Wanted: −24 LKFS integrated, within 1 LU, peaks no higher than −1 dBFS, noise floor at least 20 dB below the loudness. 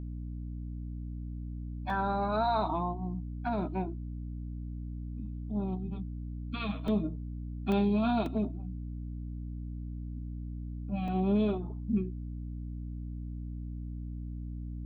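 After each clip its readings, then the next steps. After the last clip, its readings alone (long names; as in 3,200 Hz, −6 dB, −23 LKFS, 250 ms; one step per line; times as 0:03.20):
number of dropouts 5; longest dropout 2.3 ms; mains hum 60 Hz; hum harmonics up to 300 Hz; level of the hum −36 dBFS; integrated loudness −35.0 LKFS; sample peak −17.5 dBFS; target loudness −24.0 LKFS
→ repair the gap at 0:01.90/0:06.88/0:07.72/0:08.26/0:11.08, 2.3 ms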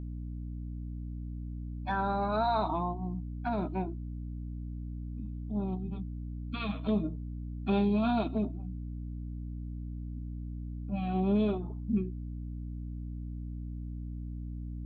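number of dropouts 0; mains hum 60 Hz; hum harmonics up to 300 Hz; level of the hum −36 dBFS
→ mains-hum notches 60/120/180/240/300 Hz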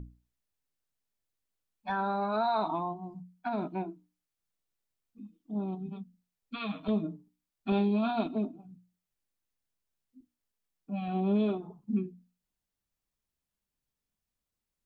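mains hum none found; integrated loudness −33.0 LKFS; sample peak −18.5 dBFS; target loudness −24.0 LKFS
→ level +9 dB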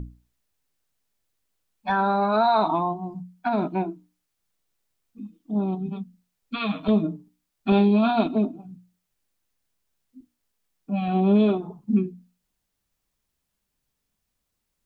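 integrated loudness −24.0 LKFS; sample peak −9.5 dBFS; background noise floor −79 dBFS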